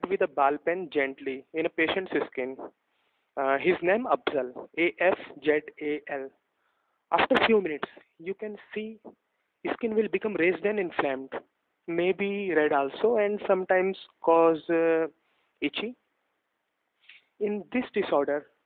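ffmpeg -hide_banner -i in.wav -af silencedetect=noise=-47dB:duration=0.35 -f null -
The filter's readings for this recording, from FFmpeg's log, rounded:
silence_start: 2.69
silence_end: 3.37 | silence_duration: 0.68
silence_start: 6.28
silence_end: 7.11 | silence_duration: 0.83
silence_start: 9.10
silence_end: 9.65 | silence_duration: 0.54
silence_start: 11.41
silence_end: 11.88 | silence_duration: 0.46
silence_start: 15.09
silence_end: 15.62 | silence_duration: 0.52
silence_start: 15.93
silence_end: 17.09 | silence_duration: 1.16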